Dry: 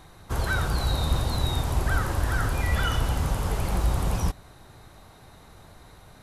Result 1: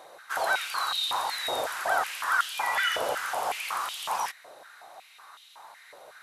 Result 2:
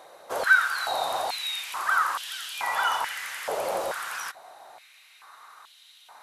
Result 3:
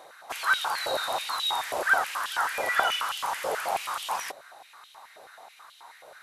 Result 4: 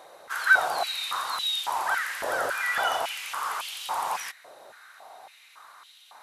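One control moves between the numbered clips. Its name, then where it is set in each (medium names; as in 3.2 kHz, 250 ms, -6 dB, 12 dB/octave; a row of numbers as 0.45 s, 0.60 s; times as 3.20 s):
step-sequenced high-pass, rate: 5.4 Hz, 2.3 Hz, 9.3 Hz, 3.6 Hz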